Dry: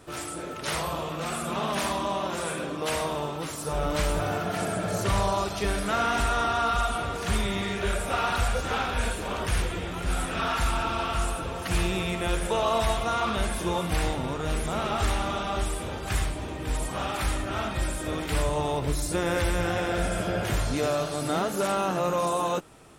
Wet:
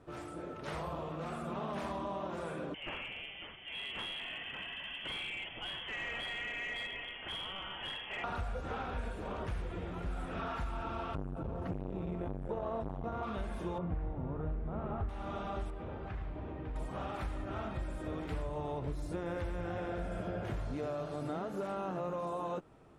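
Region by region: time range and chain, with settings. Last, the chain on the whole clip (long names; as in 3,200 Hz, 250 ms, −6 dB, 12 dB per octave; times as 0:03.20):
0:02.74–0:08.24: voice inversion scrambler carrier 3,300 Hz + hard clipping −21.5 dBFS
0:11.15–0:13.23: tilt shelving filter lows +8 dB, about 1,200 Hz + saturating transformer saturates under 430 Hz
0:13.78–0:15.09: low-pass filter 1,600 Hz + low-shelf EQ 240 Hz +8 dB
0:15.70–0:16.76: low-pass filter 2,900 Hz + downward compressor 3 to 1, threshold −31 dBFS
whole clip: low-pass filter 1,000 Hz 6 dB per octave; downward compressor, threshold −28 dBFS; level −6 dB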